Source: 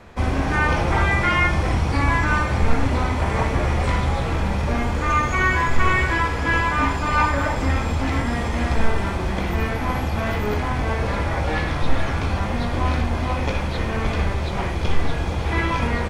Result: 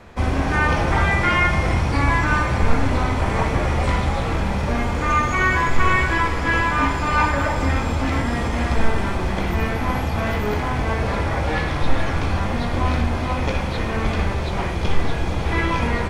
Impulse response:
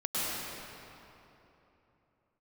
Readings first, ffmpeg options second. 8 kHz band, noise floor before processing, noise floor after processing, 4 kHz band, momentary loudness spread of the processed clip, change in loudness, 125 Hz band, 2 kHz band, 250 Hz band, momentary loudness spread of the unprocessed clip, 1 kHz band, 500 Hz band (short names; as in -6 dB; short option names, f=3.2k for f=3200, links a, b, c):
+1.0 dB, -25 dBFS, -24 dBFS, +1.0 dB, 6 LU, +1.0 dB, +0.5 dB, +1.0 dB, +1.0 dB, 6 LU, +1.0 dB, +1.0 dB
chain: -filter_complex "[0:a]asplit=2[a][b];[1:a]atrim=start_sample=2205[c];[b][c]afir=irnorm=-1:irlink=0,volume=-19dB[d];[a][d]amix=inputs=2:normalize=0"